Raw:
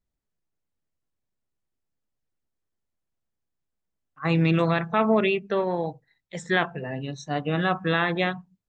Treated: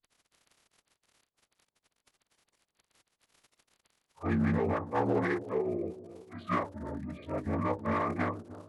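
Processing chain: frequency axis rescaled in octaves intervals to 81%; crackle 46 per s -37 dBFS; one-sided clip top -18.5 dBFS, bottom -14 dBFS; bucket-brigade echo 305 ms, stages 2048, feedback 43%, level -15 dB; formant-preserving pitch shift -11.5 st; trim -5.5 dB

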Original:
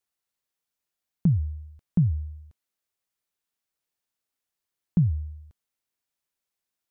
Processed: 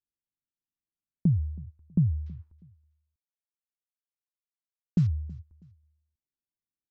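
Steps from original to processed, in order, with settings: 2.26–5.07 s: CVSD coder 32 kbps; high-order bell 580 Hz -10.5 dB 1 oct; level-controlled noise filter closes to 360 Hz, open at -22 dBFS; feedback delay 323 ms, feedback 31%, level -22 dB; trim -2 dB

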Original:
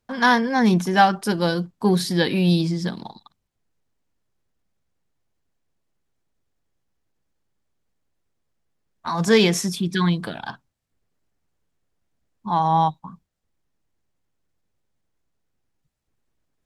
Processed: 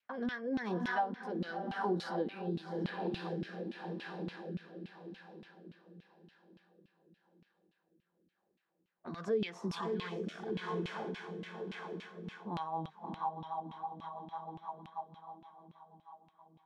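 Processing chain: median filter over 3 samples; echo that smears into a reverb 650 ms, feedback 45%, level -6 dB; LFO band-pass saw down 3.5 Hz 220–2900 Hz; dynamic bell 2.1 kHz, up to -4 dB, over -47 dBFS, Q 1.7; compression 3:1, threshold -42 dBFS, peak gain reduction 20.5 dB; rotary cabinet horn 0.9 Hz, later 6.3 Hz, at 11.86 s; vibrato 0.35 Hz 6.5 cents; trim +6.5 dB

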